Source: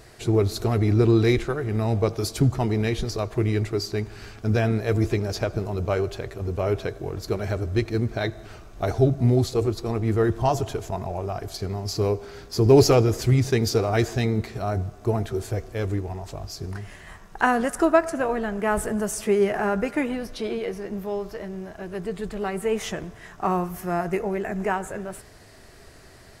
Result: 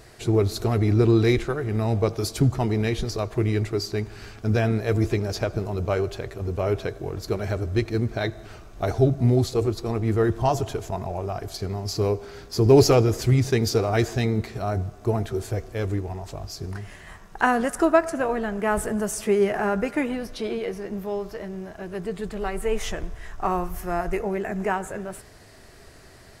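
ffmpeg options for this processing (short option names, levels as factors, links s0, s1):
-filter_complex "[0:a]asplit=3[s0][s1][s2];[s0]afade=t=out:st=22.39:d=0.02[s3];[s1]asubboost=boost=9:cutoff=52,afade=t=in:st=22.39:d=0.02,afade=t=out:st=24.2:d=0.02[s4];[s2]afade=t=in:st=24.2:d=0.02[s5];[s3][s4][s5]amix=inputs=3:normalize=0"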